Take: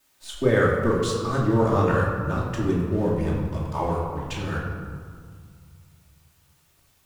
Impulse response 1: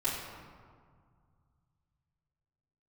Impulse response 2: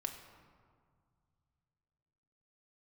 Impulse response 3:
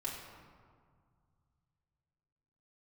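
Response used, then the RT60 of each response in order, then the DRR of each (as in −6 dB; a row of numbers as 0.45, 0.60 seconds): 1; 2.0, 2.0, 2.0 seconds; −10.5, 3.5, −5.5 decibels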